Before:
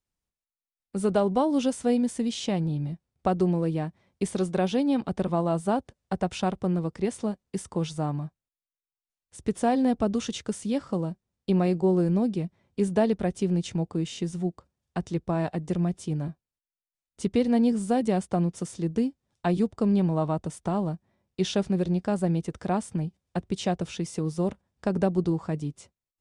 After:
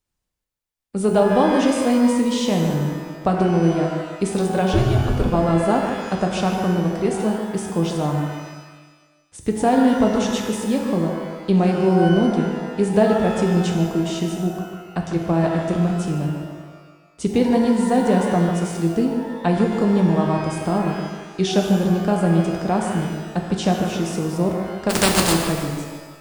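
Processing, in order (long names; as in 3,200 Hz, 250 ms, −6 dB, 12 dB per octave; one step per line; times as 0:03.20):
0:24.89–0:25.32: compressing power law on the bin magnitudes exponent 0.28
feedback echo with a low-pass in the loop 148 ms, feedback 41%, level −6 dB
0:04.73–0:05.26: frequency shifter −150 Hz
reverb with rising layers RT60 1.2 s, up +12 semitones, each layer −8 dB, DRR 3 dB
level +5 dB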